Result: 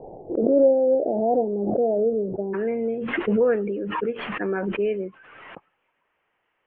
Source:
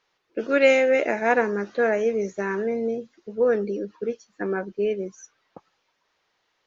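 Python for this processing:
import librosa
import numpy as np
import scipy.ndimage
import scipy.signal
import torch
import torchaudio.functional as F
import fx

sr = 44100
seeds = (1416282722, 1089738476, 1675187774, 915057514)

y = fx.steep_lowpass(x, sr, hz=fx.steps((0.0, 780.0), (2.53, 3000.0)), slope=72)
y = fx.pre_swell(y, sr, db_per_s=28.0)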